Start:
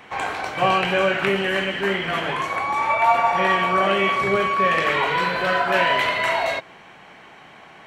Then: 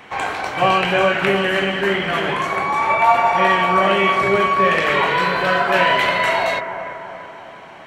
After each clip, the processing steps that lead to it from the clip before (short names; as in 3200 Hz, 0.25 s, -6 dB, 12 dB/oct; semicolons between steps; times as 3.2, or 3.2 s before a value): analogue delay 0.336 s, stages 4096, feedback 55%, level -9 dB; gain +3 dB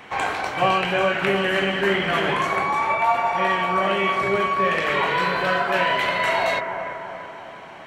vocal rider within 3 dB 0.5 s; gain -4 dB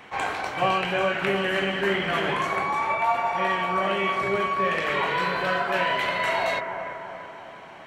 attack slew limiter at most 370 dB/s; gain -3.5 dB